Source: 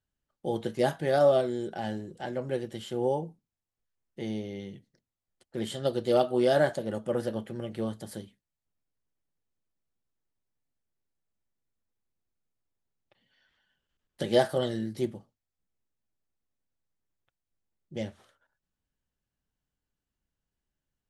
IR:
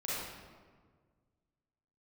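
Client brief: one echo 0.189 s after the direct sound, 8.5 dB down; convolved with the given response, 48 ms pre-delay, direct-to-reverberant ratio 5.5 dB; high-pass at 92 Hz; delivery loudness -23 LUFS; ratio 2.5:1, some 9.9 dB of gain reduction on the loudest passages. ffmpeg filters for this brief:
-filter_complex "[0:a]highpass=92,acompressor=threshold=-33dB:ratio=2.5,aecho=1:1:189:0.376,asplit=2[a][b];[1:a]atrim=start_sample=2205,adelay=48[c];[b][c]afir=irnorm=-1:irlink=0,volume=-10dB[d];[a][d]amix=inputs=2:normalize=0,volume=12.5dB"

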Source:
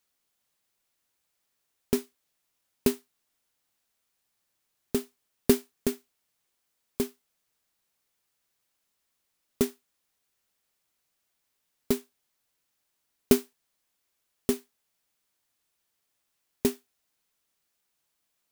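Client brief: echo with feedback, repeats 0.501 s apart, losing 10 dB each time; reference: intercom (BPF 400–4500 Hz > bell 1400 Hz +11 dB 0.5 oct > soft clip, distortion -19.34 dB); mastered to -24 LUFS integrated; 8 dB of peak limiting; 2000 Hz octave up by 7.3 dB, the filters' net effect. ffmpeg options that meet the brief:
-af "equalizer=f=2k:t=o:g=4,alimiter=limit=-12.5dB:level=0:latency=1,highpass=400,lowpass=4.5k,equalizer=f=1.4k:t=o:w=0.5:g=11,aecho=1:1:501|1002|1503|2004:0.316|0.101|0.0324|0.0104,asoftclip=threshold=-20.5dB,volume=17.5dB"

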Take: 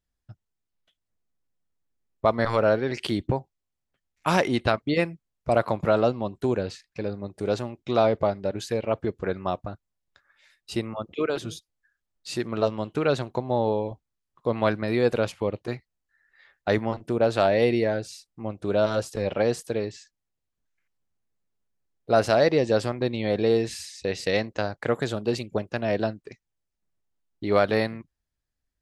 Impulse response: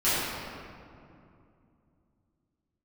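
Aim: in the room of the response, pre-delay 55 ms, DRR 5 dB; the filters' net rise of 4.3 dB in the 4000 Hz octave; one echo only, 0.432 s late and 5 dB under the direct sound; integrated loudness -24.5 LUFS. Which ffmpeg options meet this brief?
-filter_complex "[0:a]equalizer=f=4k:t=o:g=5,aecho=1:1:432:0.562,asplit=2[a][b];[1:a]atrim=start_sample=2205,adelay=55[c];[b][c]afir=irnorm=-1:irlink=0,volume=-20dB[d];[a][d]amix=inputs=2:normalize=0,volume=-0.5dB"

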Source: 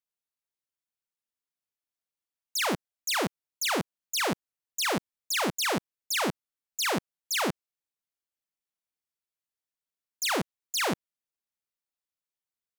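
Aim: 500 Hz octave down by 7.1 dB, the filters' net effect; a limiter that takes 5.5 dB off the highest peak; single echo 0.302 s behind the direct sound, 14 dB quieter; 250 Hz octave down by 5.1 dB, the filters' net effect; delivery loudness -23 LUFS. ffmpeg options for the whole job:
-af "equalizer=f=250:t=o:g=-4.5,equalizer=f=500:t=o:g=-8,alimiter=level_in=1dB:limit=-24dB:level=0:latency=1,volume=-1dB,aecho=1:1:302:0.2,volume=11dB"

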